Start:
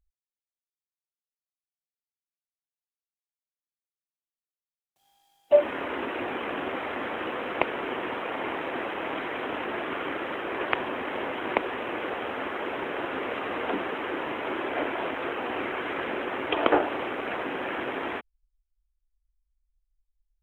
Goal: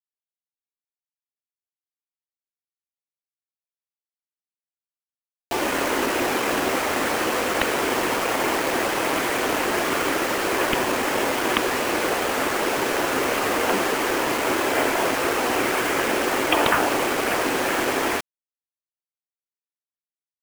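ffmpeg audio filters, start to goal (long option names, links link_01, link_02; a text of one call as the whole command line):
ffmpeg -i in.wav -af "afftfilt=real='re*lt(hypot(re,im),0.282)':imag='im*lt(hypot(re,im),0.282)':win_size=1024:overlap=0.75,aresample=8000,aeval=exprs='(mod(4.73*val(0)+1,2)-1)/4.73':channel_layout=same,aresample=44100,acrusher=bits=5:mix=0:aa=0.000001,volume=8.5dB" out.wav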